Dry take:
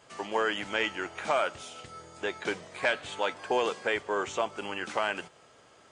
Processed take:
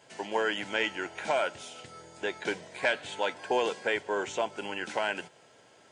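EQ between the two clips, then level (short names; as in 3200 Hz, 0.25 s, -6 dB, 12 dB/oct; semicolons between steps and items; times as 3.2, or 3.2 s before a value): HPF 100 Hz; Butterworth band-stop 1200 Hz, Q 5.1; 0.0 dB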